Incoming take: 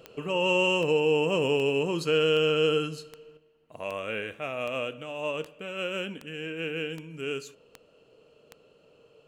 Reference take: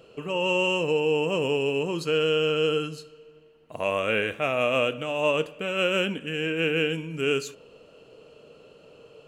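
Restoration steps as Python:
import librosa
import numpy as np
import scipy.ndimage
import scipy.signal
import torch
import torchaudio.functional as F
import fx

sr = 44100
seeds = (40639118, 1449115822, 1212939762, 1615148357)

y = fx.fix_declick_ar(x, sr, threshold=10.0)
y = fx.fix_level(y, sr, at_s=3.37, step_db=8.0)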